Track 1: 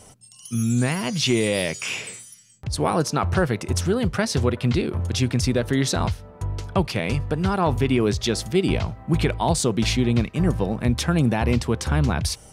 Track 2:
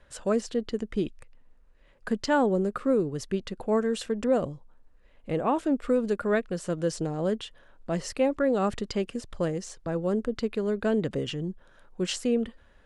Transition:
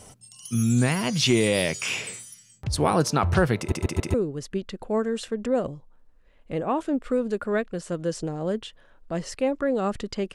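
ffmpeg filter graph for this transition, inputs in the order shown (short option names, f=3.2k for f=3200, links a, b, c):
-filter_complex "[0:a]apad=whole_dur=10.34,atrim=end=10.34,asplit=4[a][b][c][d];[a]atrim=end=3.722[e];[b]atrim=start=3.578:end=3.722[f];[c]atrim=start=3.578:end=3.722[g];[d]atrim=start=3.578:end=3.722[h];[1:a]atrim=start=2.918:end=9.12[i];[e][f]acrossfade=d=0.004:c1=hsin:c2=hsin[j];[j][g]acrossfade=d=0.004:c1=hsin:c2=hsin[k];[k][h]acrossfade=d=0.004:c1=hsin:c2=hsin[l];[l][i]acrossfade=d=0.004:c1=hsin:c2=hsin"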